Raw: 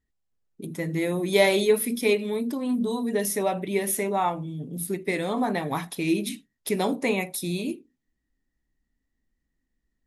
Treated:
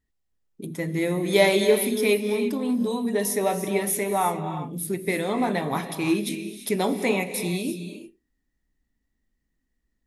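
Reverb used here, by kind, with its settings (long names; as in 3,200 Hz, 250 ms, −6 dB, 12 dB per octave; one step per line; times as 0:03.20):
reverb whose tail is shaped and stops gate 370 ms rising, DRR 8.5 dB
level +1 dB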